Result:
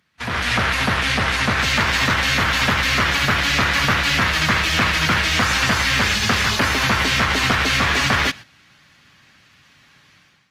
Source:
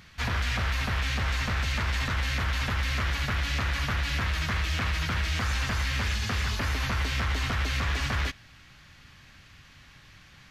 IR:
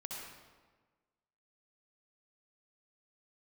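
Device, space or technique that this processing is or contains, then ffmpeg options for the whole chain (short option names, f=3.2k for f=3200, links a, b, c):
video call: -af "highpass=150,dynaudnorm=f=130:g=5:m=14dB,agate=range=-12dB:threshold=-32dB:ratio=16:detection=peak" -ar 48000 -c:a libopus -b:a 32k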